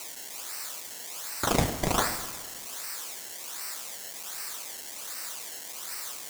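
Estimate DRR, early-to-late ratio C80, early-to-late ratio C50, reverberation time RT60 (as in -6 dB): 8.5 dB, 12.0 dB, 10.5 dB, 1.6 s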